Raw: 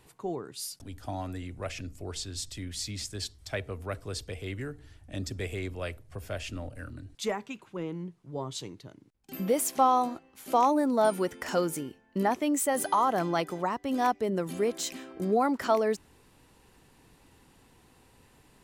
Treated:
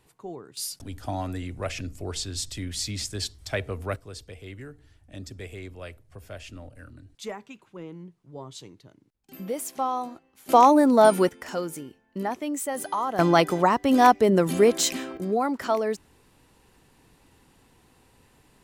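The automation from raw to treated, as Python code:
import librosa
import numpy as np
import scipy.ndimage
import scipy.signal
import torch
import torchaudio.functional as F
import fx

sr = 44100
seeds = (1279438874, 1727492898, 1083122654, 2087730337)

y = fx.gain(x, sr, db=fx.steps((0.0, -4.0), (0.57, 5.0), (3.96, -4.5), (10.49, 8.0), (11.29, -2.5), (13.19, 10.0), (15.17, 0.5)))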